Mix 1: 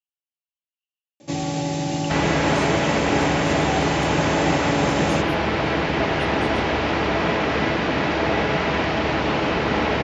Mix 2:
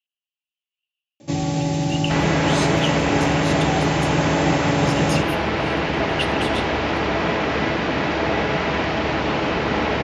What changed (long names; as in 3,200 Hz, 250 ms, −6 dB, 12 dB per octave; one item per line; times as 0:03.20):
speech +11.5 dB
first sound: add low-shelf EQ 170 Hz +9 dB